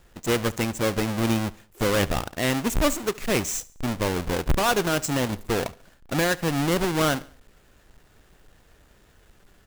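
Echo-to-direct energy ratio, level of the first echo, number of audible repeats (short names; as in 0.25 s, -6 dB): -20.5 dB, -21.5 dB, 2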